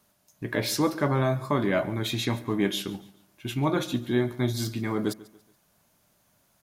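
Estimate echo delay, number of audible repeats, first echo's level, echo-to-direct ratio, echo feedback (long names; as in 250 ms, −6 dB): 142 ms, 2, −20.0 dB, −19.5 dB, 37%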